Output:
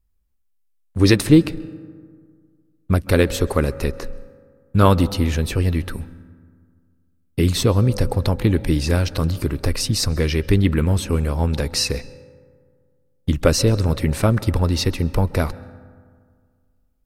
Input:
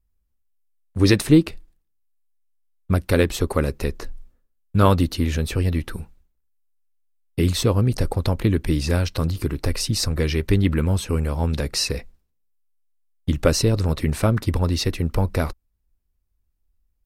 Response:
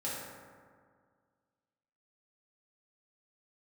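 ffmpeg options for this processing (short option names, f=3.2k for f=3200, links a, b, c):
-filter_complex "[0:a]asplit=2[a][b];[1:a]atrim=start_sample=2205,highshelf=f=8.1k:g=-10.5,adelay=131[c];[b][c]afir=irnorm=-1:irlink=0,volume=-21.5dB[d];[a][d]amix=inputs=2:normalize=0,volume=2dB"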